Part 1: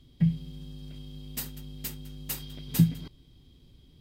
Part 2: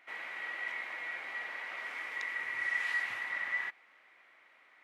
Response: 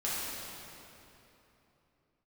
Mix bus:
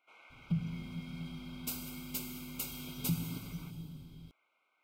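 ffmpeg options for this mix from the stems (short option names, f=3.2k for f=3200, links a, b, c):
-filter_complex "[0:a]alimiter=limit=-21dB:level=0:latency=1:release=271,adelay=300,volume=-5.5dB,asplit=2[a][b];[b]volume=-6.5dB[c];[1:a]asoftclip=type=tanh:threshold=-31dB,volume=-12dB[d];[2:a]atrim=start_sample=2205[e];[c][e]afir=irnorm=-1:irlink=0[f];[a][d][f]amix=inputs=3:normalize=0,asuperstop=centerf=1800:order=20:qfactor=3.4"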